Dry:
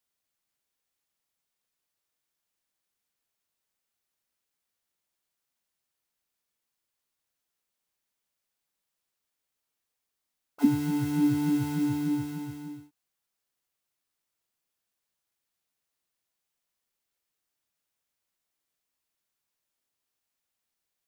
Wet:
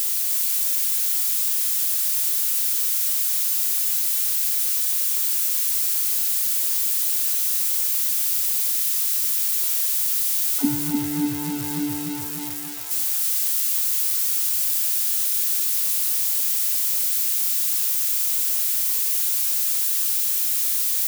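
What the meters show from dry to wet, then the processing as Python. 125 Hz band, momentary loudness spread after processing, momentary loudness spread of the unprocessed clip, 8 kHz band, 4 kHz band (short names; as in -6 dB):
-1.5 dB, 3 LU, 15 LU, +33.5 dB, +25.5 dB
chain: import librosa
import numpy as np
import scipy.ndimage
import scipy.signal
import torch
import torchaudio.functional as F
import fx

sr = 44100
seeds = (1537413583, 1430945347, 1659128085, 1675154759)

y = x + 0.5 * 10.0 ** (-19.0 / 20.0) * np.diff(np.sign(x), prepend=np.sign(x[:1]))
y = fx.echo_crushed(y, sr, ms=304, feedback_pct=35, bits=7, wet_db=-5.0)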